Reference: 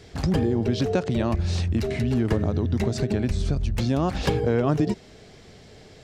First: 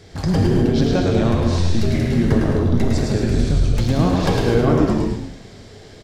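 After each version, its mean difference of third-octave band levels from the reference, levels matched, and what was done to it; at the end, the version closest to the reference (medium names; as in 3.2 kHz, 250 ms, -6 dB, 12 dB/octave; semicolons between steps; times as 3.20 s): 5.0 dB: peaking EQ 2.7 kHz -3.5 dB 0.41 oct; on a send: frequency-shifting echo 106 ms, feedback 45%, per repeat -86 Hz, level -3.5 dB; on the sum: gated-style reverb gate 280 ms flat, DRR 0.5 dB; trim +2 dB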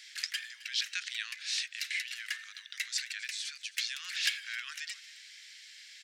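25.0 dB: steep high-pass 1.7 kHz 48 dB/octave; delay 265 ms -18.5 dB; trim +4 dB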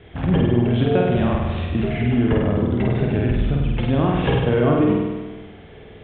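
7.0 dB: steep low-pass 3.5 kHz 96 dB/octave; flutter echo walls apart 8.5 m, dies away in 1.3 s; trim +2 dB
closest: first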